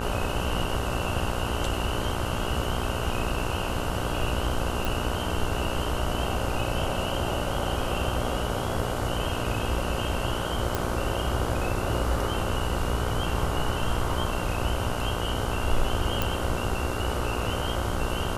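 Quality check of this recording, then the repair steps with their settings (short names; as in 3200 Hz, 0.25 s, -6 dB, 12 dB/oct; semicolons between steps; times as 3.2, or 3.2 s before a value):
buzz 60 Hz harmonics 26 -32 dBFS
4.85 pop
10.75 pop
16.22 pop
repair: de-click; de-hum 60 Hz, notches 26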